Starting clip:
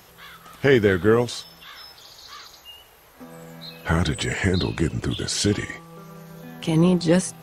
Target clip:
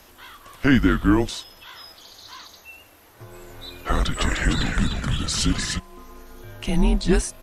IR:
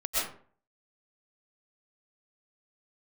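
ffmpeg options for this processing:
-filter_complex "[0:a]afreqshift=-140,asplit=3[link_01][link_02][link_03];[link_01]afade=type=out:start_time=3.34:duration=0.02[link_04];[link_02]asplit=6[link_05][link_06][link_07][link_08][link_09][link_10];[link_06]adelay=301,afreqshift=-88,volume=-4dB[link_11];[link_07]adelay=602,afreqshift=-176,volume=-12.6dB[link_12];[link_08]adelay=903,afreqshift=-264,volume=-21.3dB[link_13];[link_09]adelay=1204,afreqshift=-352,volume=-29.9dB[link_14];[link_10]adelay=1505,afreqshift=-440,volume=-38.5dB[link_15];[link_05][link_11][link_12][link_13][link_14][link_15]amix=inputs=6:normalize=0,afade=type=in:start_time=3.34:duration=0.02,afade=type=out:start_time=5.78:duration=0.02[link_16];[link_03]afade=type=in:start_time=5.78:duration=0.02[link_17];[link_04][link_16][link_17]amix=inputs=3:normalize=0"

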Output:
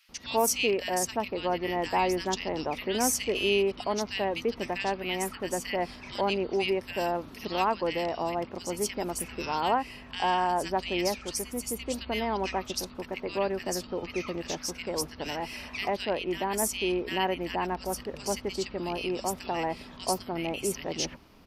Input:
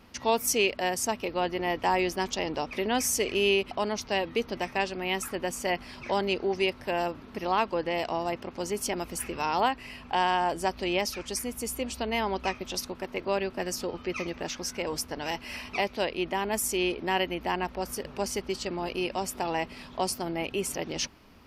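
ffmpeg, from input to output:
ffmpeg -i in.wav -filter_complex "[0:a]asettb=1/sr,asplit=3[link_01][link_02][link_03];[link_01]atrim=end=6.934[link_04];[link_02]atrim=start=6.93:end=7.93,asetpts=PTS-STARTPTS,afade=type=in:duration=0.004:curve=qsin,afade=type=out:start_time=0.996:duration=0.004:curve=qsin,highshelf=frequency=5500:gain=9.5[link_05];[link_03]atrim=start=7.926[link_06];[link_04][link_05]acrossfade=duration=0.004:curve1=hsin:curve2=qsin[link_07];[link_07][link_06]acrossfade=duration=0.004:curve1=qsin:curve2=hsin,acrossover=split=1800[link_08][link_09];[link_08]adelay=90[link_10];[link_10][link_09]amix=inputs=2:normalize=0" out.wav

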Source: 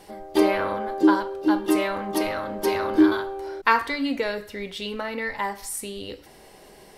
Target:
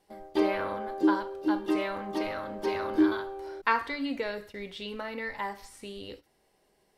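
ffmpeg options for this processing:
ffmpeg -i in.wav -filter_complex "[0:a]agate=range=-14dB:threshold=-40dB:ratio=16:detection=peak,acrossover=split=5300[link_01][link_02];[link_02]acompressor=threshold=-52dB:ratio=4:attack=1:release=60[link_03];[link_01][link_03]amix=inputs=2:normalize=0,volume=-6.5dB" out.wav

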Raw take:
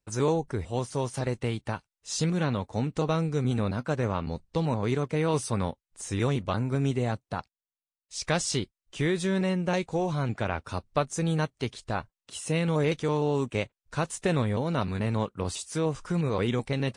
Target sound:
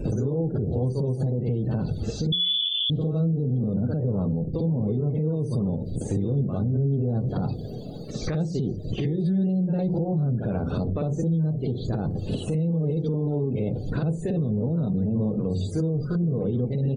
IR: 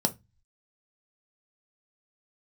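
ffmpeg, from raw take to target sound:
-filter_complex "[0:a]aeval=exprs='val(0)+0.5*0.0316*sgn(val(0))':channel_layout=same,lowshelf=frequency=580:width_type=q:width=1.5:gain=8.5,asplit=2[link_01][link_02];[1:a]atrim=start_sample=2205,asetrate=35721,aresample=44100,adelay=53[link_03];[link_02][link_03]afir=irnorm=-1:irlink=0,volume=-4.5dB[link_04];[link_01][link_04]amix=inputs=2:normalize=0,acompressor=threshold=-19dB:ratio=4,aecho=1:1:489|978|1467:0.0708|0.0361|0.0184,acrossover=split=2500[link_05][link_06];[link_06]acompressor=threshold=-39dB:ratio=4:attack=1:release=60[link_07];[link_05][link_07]amix=inputs=2:normalize=0,asettb=1/sr,asplit=3[link_08][link_09][link_10];[link_08]atrim=end=2.324[link_11];[link_09]atrim=start=2.32:end=2.9,asetpts=PTS-STARTPTS,afade=type=in:duration=0.004:curve=qsin,afade=type=out:start_time=0.576:duration=0.004:curve=qsin,lowpass=frequency=3100:width_type=q:width=0.5098,lowpass=frequency=3100:width_type=q:width=0.6013,lowpass=frequency=3100:width_type=q:width=0.9,lowpass=frequency=3100:width_type=q:width=2.563,afreqshift=-3600[link_12];[link_10]atrim=start=2.896[link_13];[link_11][link_12]acrossfade=duration=0.004:curve1=hsin:curve2=qsin[link_14];[link_14][link_13]acrossfade=duration=0.004:curve1=qsin:curve2=hsin,afftdn=noise_reduction=31:noise_floor=-40,bandreject=frequency=89.63:width_type=h:width=4,bandreject=frequency=179.26:width_type=h:width=4,bandreject=frequency=268.89:width_type=h:width=4,bandreject=frequency=358.52:width_type=h:width=4,bandreject=frequency=448.15:width_type=h:width=4,bandreject=frequency=537.78:width_type=h:width=4,alimiter=limit=-18dB:level=0:latency=1:release=122"

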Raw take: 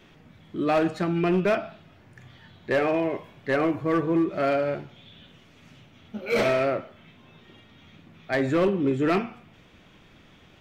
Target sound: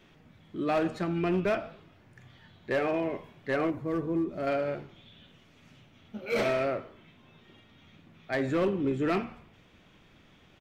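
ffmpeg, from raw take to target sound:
ffmpeg -i in.wav -filter_complex "[0:a]asettb=1/sr,asplit=3[link_01][link_02][link_03];[link_01]atrim=end=3.704[link_04];[link_02]atrim=start=3.7:end=4.47,asetpts=PTS-STARTPTS,afade=type=in:duration=0.004:curve=qsin,afade=type=out:start_time=0.766:duration=0.004:curve=qsin,equalizer=frequency=2000:width_type=o:width=2.9:gain=-8.5[link_05];[link_03]atrim=start=4.466[link_06];[link_04][link_05]acrossfade=duration=0.004:curve1=hsin:curve2=qsin[link_07];[link_07][link_06]acrossfade=duration=0.004:curve1=qsin:curve2=hsin,asplit=5[link_08][link_09][link_10][link_11][link_12];[link_09]adelay=84,afreqshift=-83,volume=-22dB[link_13];[link_10]adelay=168,afreqshift=-166,volume=-27.2dB[link_14];[link_11]adelay=252,afreqshift=-249,volume=-32.4dB[link_15];[link_12]adelay=336,afreqshift=-332,volume=-37.6dB[link_16];[link_08][link_13][link_14][link_15][link_16]amix=inputs=5:normalize=0,volume=-5dB" out.wav

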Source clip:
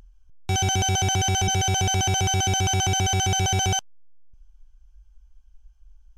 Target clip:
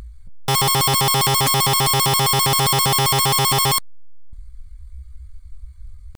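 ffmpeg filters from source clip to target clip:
ffmpeg -i in.wav -af "asetrate=62367,aresample=44100,atempo=0.707107,aeval=exprs='0.2*sin(PI/2*3.16*val(0)/0.2)':channel_layout=same" out.wav

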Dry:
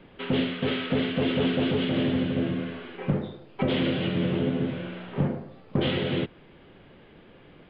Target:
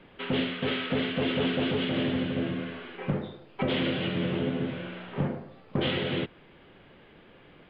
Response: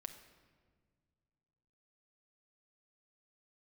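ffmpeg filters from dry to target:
-af "equalizer=frequency=1900:width=0.34:gain=4.5,volume=-4dB"

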